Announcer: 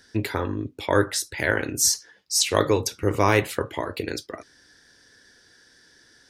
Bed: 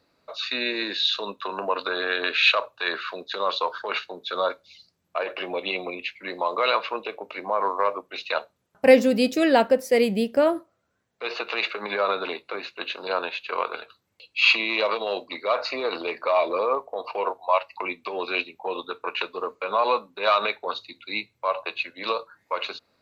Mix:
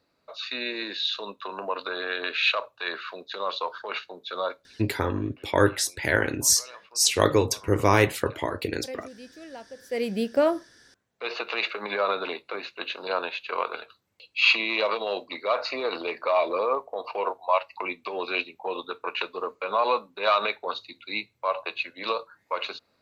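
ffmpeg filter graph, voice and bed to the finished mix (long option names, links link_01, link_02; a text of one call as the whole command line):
ffmpeg -i stem1.wav -i stem2.wav -filter_complex "[0:a]adelay=4650,volume=0dB[link_01];[1:a]volume=18dB,afade=type=out:start_time=4.78:duration=0.24:silence=0.105925,afade=type=in:start_time=9.77:duration=0.54:silence=0.0749894[link_02];[link_01][link_02]amix=inputs=2:normalize=0" out.wav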